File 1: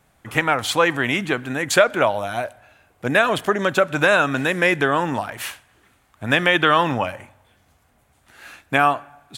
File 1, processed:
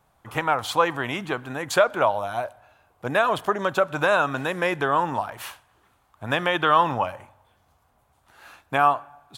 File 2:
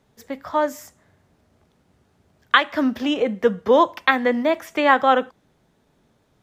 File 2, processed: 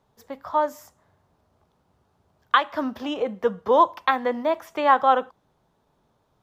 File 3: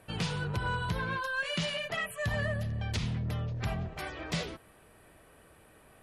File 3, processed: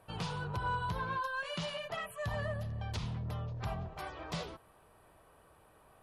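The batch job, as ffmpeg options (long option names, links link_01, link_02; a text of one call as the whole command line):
ffmpeg -i in.wav -af "equalizer=frequency=250:width_type=o:width=1:gain=-4,equalizer=frequency=1000:width_type=o:width=1:gain=7,equalizer=frequency=2000:width_type=o:width=1:gain=-6,equalizer=frequency=8000:width_type=o:width=1:gain=-4,volume=-4.5dB" out.wav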